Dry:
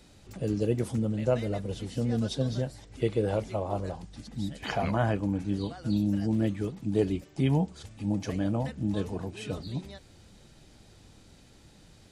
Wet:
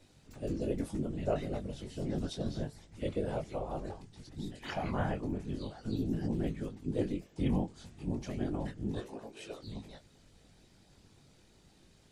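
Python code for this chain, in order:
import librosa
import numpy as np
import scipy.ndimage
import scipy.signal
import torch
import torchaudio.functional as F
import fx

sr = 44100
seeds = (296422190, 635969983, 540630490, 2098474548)

y = fx.highpass(x, sr, hz=330.0, slope=12, at=(8.98, 9.63))
y = fx.whisperise(y, sr, seeds[0])
y = fx.chorus_voices(y, sr, voices=2, hz=0.32, base_ms=20, depth_ms=1.8, mix_pct=35)
y = F.gain(torch.from_numpy(y), -4.0).numpy()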